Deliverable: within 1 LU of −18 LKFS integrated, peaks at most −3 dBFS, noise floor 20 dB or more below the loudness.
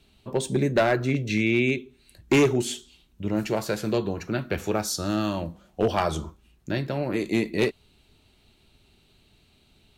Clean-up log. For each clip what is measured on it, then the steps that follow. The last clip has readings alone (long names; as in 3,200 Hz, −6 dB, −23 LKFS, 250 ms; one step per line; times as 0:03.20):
share of clipped samples 0.6%; peaks flattened at −14.5 dBFS; integrated loudness −26.0 LKFS; sample peak −14.5 dBFS; target loudness −18.0 LKFS
→ clipped peaks rebuilt −14.5 dBFS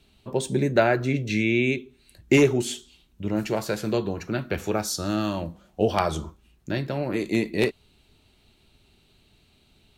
share of clipped samples 0.0%; integrated loudness −25.5 LKFS; sample peak −6.0 dBFS; target loudness −18.0 LKFS
→ level +7.5 dB
brickwall limiter −3 dBFS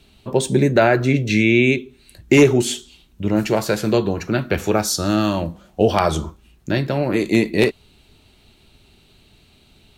integrated loudness −18.5 LKFS; sample peak −3.0 dBFS; background noise floor −54 dBFS